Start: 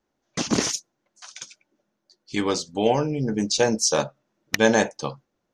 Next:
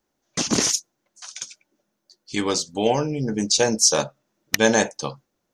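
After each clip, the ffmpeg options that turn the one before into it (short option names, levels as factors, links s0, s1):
-af "highshelf=f=5700:g=10.5"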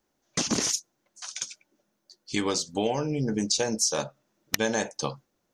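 -af "acompressor=threshold=0.0708:ratio=5"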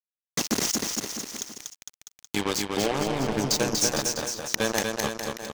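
-af "highpass=f=110:w=0.5412,highpass=f=110:w=1.3066,acrusher=bits=3:mix=0:aa=0.5,aecho=1:1:240|456|650.4|825.4|982.8:0.631|0.398|0.251|0.158|0.1"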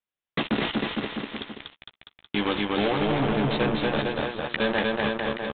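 -filter_complex "[0:a]asplit=2[s0][s1];[s1]adelay=14,volume=0.299[s2];[s0][s2]amix=inputs=2:normalize=0,aresample=8000,asoftclip=type=tanh:threshold=0.0562,aresample=44100,volume=2.24"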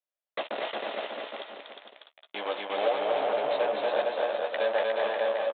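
-af "highpass=f=600:t=q:w=4.5,aecho=1:1:357:0.631,volume=0.376"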